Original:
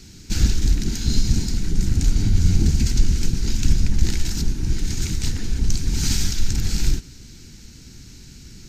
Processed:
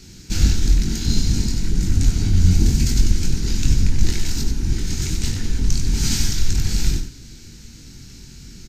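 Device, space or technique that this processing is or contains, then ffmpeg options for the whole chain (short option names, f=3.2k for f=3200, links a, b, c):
slapback doubling: -filter_complex "[0:a]asplit=3[a][b][c];[b]adelay=22,volume=-5dB[d];[c]adelay=94,volume=-7dB[e];[a][d][e]amix=inputs=3:normalize=0,asettb=1/sr,asplit=3[f][g][h];[f]atrim=end=2.514[i];[g]atrim=start=2.51:end=3.11,asetpts=PTS-STARTPTS,afade=t=in:d=0.004:c=qsin,afade=t=out:st=0.596:d=0.004:c=qsin,highshelf=f=9.4k:g=6[j];[h]atrim=start=3.106[k];[i][j]acrossfade=d=0.004:c1=hsin:c2=qsin[l];[l][k]acrossfade=d=0.004:c1=qsin:c2=hsin"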